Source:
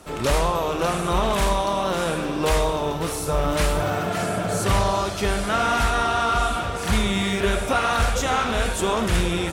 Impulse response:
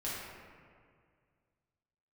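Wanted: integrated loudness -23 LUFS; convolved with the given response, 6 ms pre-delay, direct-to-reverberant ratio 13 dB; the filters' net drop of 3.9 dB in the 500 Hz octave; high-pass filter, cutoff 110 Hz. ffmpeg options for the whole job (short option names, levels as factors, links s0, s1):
-filter_complex "[0:a]highpass=110,equalizer=f=500:t=o:g=-5,asplit=2[s0][s1];[1:a]atrim=start_sample=2205,adelay=6[s2];[s1][s2]afir=irnorm=-1:irlink=0,volume=0.15[s3];[s0][s3]amix=inputs=2:normalize=0,volume=1.12"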